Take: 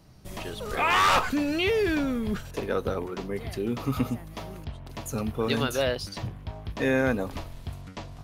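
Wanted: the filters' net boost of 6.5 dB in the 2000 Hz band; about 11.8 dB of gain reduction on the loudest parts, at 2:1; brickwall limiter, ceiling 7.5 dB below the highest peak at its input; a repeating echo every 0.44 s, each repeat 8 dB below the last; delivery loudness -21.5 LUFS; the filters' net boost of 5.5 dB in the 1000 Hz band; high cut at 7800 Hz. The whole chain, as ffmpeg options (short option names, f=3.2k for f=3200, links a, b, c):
-af "lowpass=7.8k,equalizer=f=1k:t=o:g=4.5,equalizer=f=2k:t=o:g=7,acompressor=threshold=-35dB:ratio=2,alimiter=level_in=0.5dB:limit=-24dB:level=0:latency=1,volume=-0.5dB,aecho=1:1:440|880|1320|1760|2200:0.398|0.159|0.0637|0.0255|0.0102,volume=13.5dB"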